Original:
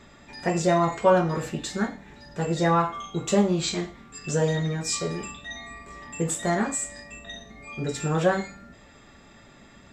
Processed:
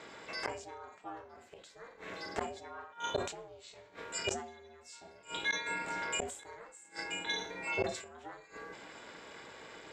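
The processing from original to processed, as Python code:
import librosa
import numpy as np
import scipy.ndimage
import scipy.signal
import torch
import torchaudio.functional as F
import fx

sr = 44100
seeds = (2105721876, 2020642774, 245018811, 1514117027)

p1 = fx.high_shelf(x, sr, hz=5300.0, db=-6.0)
p2 = fx.rider(p1, sr, range_db=3, speed_s=0.5)
p3 = p1 + (p2 * 10.0 ** (0.0 / 20.0))
p4 = p3 * np.sin(2.0 * np.pi * 240.0 * np.arange(len(p3)) / sr)
p5 = fx.highpass(p4, sr, hz=530.0, slope=6)
p6 = fx.gate_flip(p5, sr, shuts_db=-23.0, range_db=-28)
p7 = fx.sustainer(p6, sr, db_per_s=86.0)
y = p7 * 10.0 ** (2.0 / 20.0)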